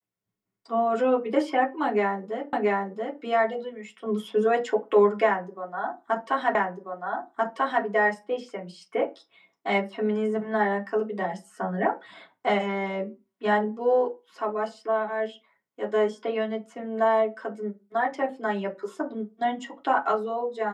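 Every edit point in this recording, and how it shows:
0:02.53: the same again, the last 0.68 s
0:06.55: the same again, the last 1.29 s

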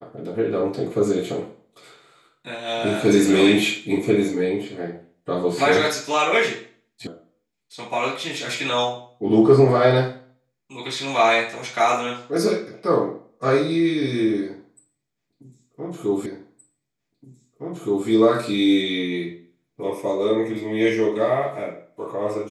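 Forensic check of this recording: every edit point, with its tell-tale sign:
0:07.07: cut off before it has died away
0:16.26: the same again, the last 1.82 s

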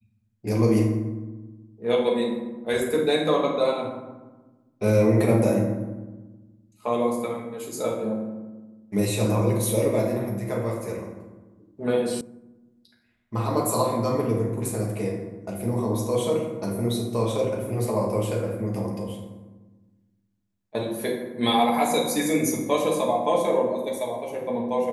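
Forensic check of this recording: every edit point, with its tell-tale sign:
0:12.21: cut off before it has died away

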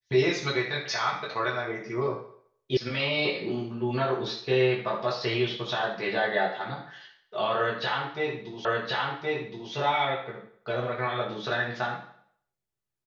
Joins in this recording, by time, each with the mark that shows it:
0:02.77: cut off before it has died away
0:08.65: the same again, the last 1.07 s

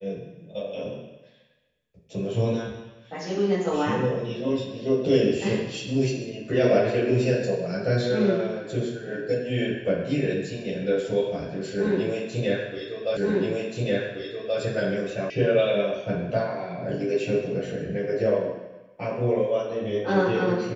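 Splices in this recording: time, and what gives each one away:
0:13.17: the same again, the last 1.43 s
0:15.30: cut off before it has died away

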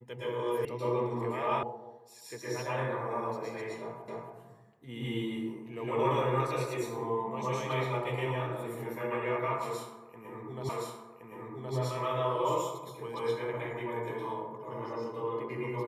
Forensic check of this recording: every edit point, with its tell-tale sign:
0:00.65: cut off before it has died away
0:01.63: cut off before it has died away
0:04.08: the same again, the last 0.28 s
0:10.69: the same again, the last 1.07 s

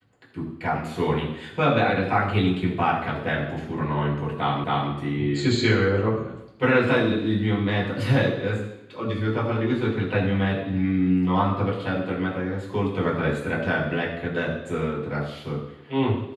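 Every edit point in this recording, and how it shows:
0:04.64: the same again, the last 0.27 s

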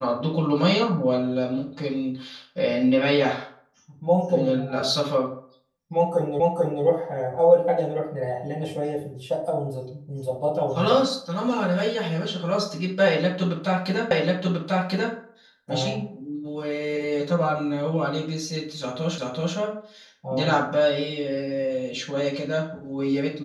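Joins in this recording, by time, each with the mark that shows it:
0:06.40: the same again, the last 0.44 s
0:14.11: the same again, the last 1.04 s
0:19.18: the same again, the last 0.38 s

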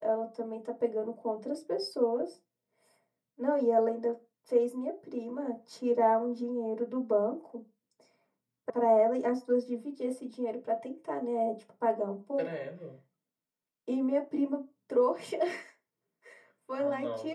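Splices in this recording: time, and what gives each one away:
0:08.70: cut off before it has died away

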